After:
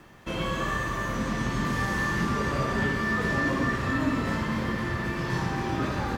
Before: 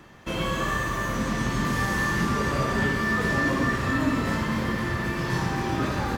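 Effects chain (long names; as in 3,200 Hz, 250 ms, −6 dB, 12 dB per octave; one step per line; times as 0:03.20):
high-shelf EQ 7,800 Hz −6.5 dB
background noise pink −63 dBFS
level −2 dB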